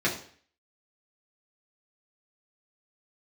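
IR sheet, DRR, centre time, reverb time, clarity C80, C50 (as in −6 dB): −6.0 dB, 24 ms, 0.50 s, 13.0 dB, 9.0 dB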